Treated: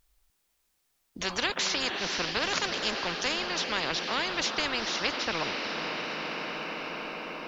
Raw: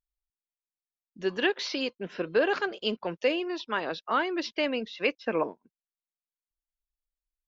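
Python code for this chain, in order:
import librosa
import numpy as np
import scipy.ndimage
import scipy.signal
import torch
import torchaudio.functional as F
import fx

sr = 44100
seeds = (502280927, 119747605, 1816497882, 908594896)

p1 = x + fx.echo_diffused(x, sr, ms=479, feedback_pct=63, wet_db=-16, dry=0)
y = fx.spectral_comp(p1, sr, ratio=4.0)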